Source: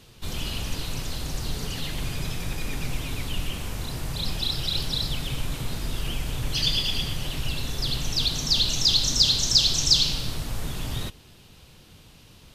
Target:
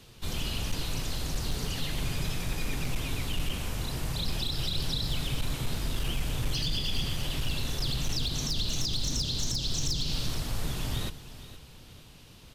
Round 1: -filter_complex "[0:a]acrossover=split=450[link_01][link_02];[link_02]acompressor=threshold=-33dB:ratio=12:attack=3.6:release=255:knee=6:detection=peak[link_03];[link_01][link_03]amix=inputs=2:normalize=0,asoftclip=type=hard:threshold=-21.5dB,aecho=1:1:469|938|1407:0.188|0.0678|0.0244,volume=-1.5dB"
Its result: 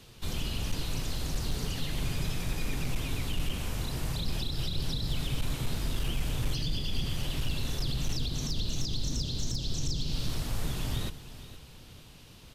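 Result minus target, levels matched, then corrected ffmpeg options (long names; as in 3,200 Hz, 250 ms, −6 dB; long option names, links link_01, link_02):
downward compressor: peak gain reduction +6 dB
-filter_complex "[0:a]acrossover=split=450[link_01][link_02];[link_02]acompressor=threshold=-26.5dB:ratio=12:attack=3.6:release=255:knee=6:detection=peak[link_03];[link_01][link_03]amix=inputs=2:normalize=0,asoftclip=type=hard:threshold=-21.5dB,aecho=1:1:469|938|1407:0.188|0.0678|0.0244,volume=-1.5dB"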